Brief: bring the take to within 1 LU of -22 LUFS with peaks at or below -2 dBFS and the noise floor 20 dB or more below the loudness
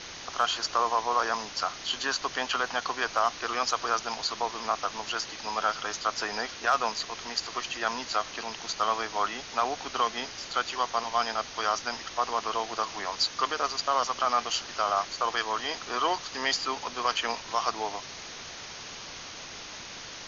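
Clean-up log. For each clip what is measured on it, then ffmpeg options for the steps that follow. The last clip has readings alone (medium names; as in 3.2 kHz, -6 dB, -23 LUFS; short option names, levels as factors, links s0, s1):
noise floor -42 dBFS; noise floor target -50 dBFS; loudness -29.5 LUFS; peak level -12.0 dBFS; loudness target -22.0 LUFS
-> -af "afftdn=nr=8:nf=-42"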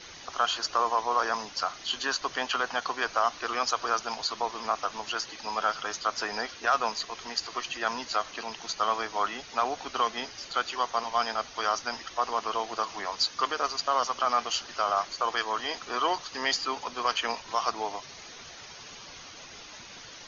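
noise floor -46 dBFS; noise floor target -50 dBFS
-> -af "afftdn=nr=6:nf=-46"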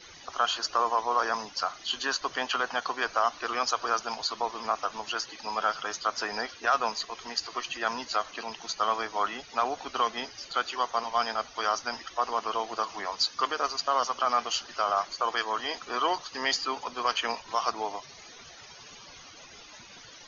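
noise floor -49 dBFS; noise floor target -50 dBFS
-> -af "afftdn=nr=6:nf=-49"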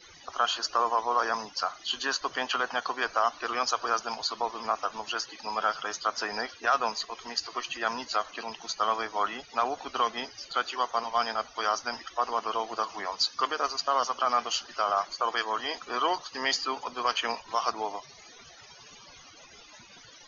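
noise floor -52 dBFS; loudness -29.5 LUFS; peak level -11.5 dBFS; loudness target -22.0 LUFS
-> -af "volume=2.37"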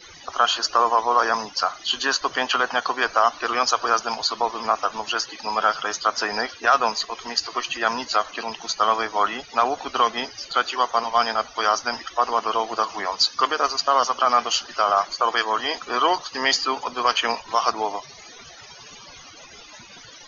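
loudness -22.0 LUFS; peak level -4.0 dBFS; noise floor -44 dBFS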